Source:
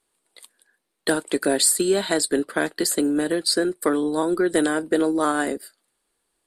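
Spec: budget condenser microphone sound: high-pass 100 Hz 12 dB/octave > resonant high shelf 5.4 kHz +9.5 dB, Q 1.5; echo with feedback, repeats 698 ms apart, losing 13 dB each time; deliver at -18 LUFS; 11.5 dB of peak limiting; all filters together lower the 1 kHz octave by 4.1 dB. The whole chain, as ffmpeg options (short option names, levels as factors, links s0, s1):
-af "equalizer=f=1000:t=o:g=-5.5,alimiter=limit=0.133:level=0:latency=1,highpass=100,highshelf=f=5400:t=q:w=1.5:g=9.5,aecho=1:1:698|1396|2094:0.224|0.0493|0.0108,volume=1.58"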